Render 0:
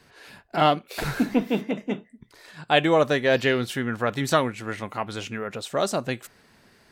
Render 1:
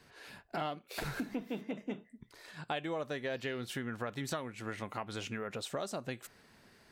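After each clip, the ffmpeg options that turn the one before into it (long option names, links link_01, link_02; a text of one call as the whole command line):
ffmpeg -i in.wav -af "acompressor=threshold=-30dB:ratio=6,volume=-5dB" out.wav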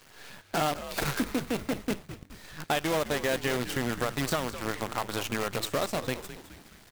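ffmpeg -i in.wav -filter_complex "[0:a]acrusher=bits=7:dc=4:mix=0:aa=0.000001,asplit=6[link_01][link_02][link_03][link_04][link_05][link_06];[link_02]adelay=209,afreqshift=-100,volume=-12.5dB[link_07];[link_03]adelay=418,afreqshift=-200,volume=-18.7dB[link_08];[link_04]adelay=627,afreqshift=-300,volume=-24.9dB[link_09];[link_05]adelay=836,afreqshift=-400,volume=-31.1dB[link_10];[link_06]adelay=1045,afreqshift=-500,volume=-37.3dB[link_11];[link_01][link_07][link_08][link_09][link_10][link_11]amix=inputs=6:normalize=0,volume=8dB" out.wav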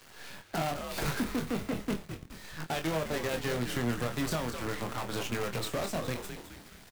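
ffmpeg -i in.wav -filter_complex "[0:a]acrossover=split=210[link_01][link_02];[link_02]asoftclip=type=tanh:threshold=-29.5dB[link_03];[link_01][link_03]amix=inputs=2:normalize=0,asplit=2[link_04][link_05];[link_05]adelay=25,volume=-6.5dB[link_06];[link_04][link_06]amix=inputs=2:normalize=0" out.wav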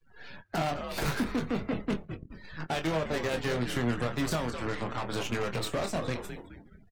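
ffmpeg -i in.wav -af "afftdn=noise_reduction=35:noise_floor=-49,volume=2dB" out.wav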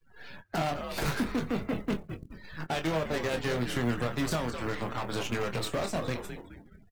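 ffmpeg -i in.wav -af "acrusher=bits=8:mode=log:mix=0:aa=0.000001" out.wav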